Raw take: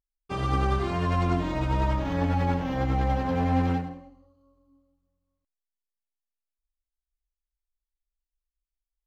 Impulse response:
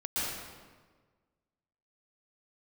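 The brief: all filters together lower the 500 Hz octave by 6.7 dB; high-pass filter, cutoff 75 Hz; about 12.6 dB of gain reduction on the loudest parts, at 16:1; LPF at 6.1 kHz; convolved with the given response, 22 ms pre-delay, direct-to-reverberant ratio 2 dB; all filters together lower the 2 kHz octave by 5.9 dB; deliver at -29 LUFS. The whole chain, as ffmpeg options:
-filter_complex "[0:a]highpass=75,lowpass=6100,equalizer=f=500:t=o:g=-8.5,equalizer=f=2000:t=o:g=-7,acompressor=threshold=0.0158:ratio=16,asplit=2[s0][s1];[1:a]atrim=start_sample=2205,adelay=22[s2];[s1][s2]afir=irnorm=-1:irlink=0,volume=0.355[s3];[s0][s3]amix=inputs=2:normalize=0,volume=2.99"

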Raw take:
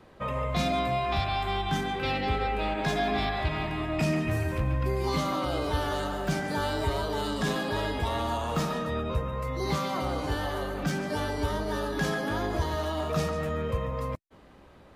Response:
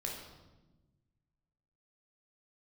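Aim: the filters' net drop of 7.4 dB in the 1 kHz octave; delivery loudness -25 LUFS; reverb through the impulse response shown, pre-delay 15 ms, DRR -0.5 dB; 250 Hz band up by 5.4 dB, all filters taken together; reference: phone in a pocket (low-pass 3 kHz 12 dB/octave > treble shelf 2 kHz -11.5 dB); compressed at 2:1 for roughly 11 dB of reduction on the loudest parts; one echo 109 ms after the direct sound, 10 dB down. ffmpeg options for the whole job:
-filter_complex "[0:a]equalizer=f=250:t=o:g=8,equalizer=f=1000:t=o:g=-8.5,acompressor=threshold=0.00794:ratio=2,aecho=1:1:109:0.316,asplit=2[s0][s1];[1:a]atrim=start_sample=2205,adelay=15[s2];[s1][s2]afir=irnorm=-1:irlink=0,volume=0.944[s3];[s0][s3]amix=inputs=2:normalize=0,lowpass=3000,highshelf=f=2000:g=-11.5,volume=2.66"

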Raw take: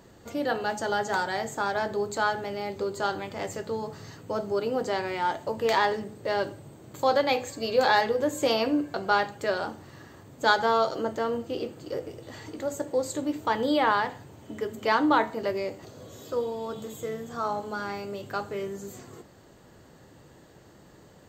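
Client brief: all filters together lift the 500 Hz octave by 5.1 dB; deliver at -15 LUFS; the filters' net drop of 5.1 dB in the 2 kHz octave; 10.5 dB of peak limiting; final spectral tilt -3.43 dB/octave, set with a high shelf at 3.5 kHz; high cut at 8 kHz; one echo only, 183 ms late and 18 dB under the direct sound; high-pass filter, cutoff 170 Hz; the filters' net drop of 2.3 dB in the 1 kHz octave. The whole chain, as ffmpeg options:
-af "highpass=170,lowpass=8000,equalizer=f=500:t=o:g=7.5,equalizer=f=1000:t=o:g=-4.5,equalizer=f=2000:t=o:g=-4.5,highshelf=f=3500:g=-4.5,alimiter=limit=0.15:level=0:latency=1,aecho=1:1:183:0.126,volume=4.47"

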